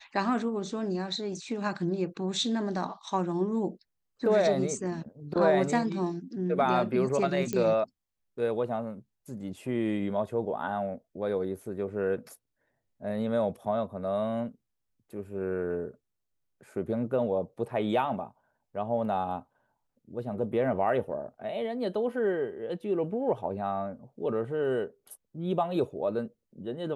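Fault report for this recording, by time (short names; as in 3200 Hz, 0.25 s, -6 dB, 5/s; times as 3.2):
7.53 pop -17 dBFS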